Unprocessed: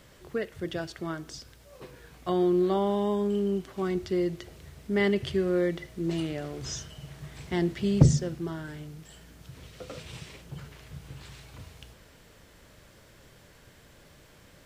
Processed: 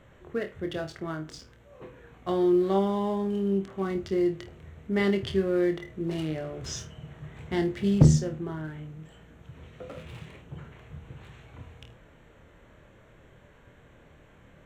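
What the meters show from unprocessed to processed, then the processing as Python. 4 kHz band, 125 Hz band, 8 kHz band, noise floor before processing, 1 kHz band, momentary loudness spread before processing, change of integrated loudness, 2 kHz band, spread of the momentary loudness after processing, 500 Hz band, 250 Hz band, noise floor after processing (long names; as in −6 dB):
−1.5 dB, +1.0 dB, −0.5 dB, −56 dBFS, +0.5 dB, 22 LU, +1.0 dB, −1.0 dB, 22 LU, +0.5 dB, +1.5 dB, −56 dBFS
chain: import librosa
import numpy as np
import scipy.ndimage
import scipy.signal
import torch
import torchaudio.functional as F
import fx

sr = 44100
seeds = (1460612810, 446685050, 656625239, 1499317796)

y = fx.wiener(x, sr, points=9)
y = fx.room_flutter(y, sr, wall_m=4.4, rt60_s=0.22)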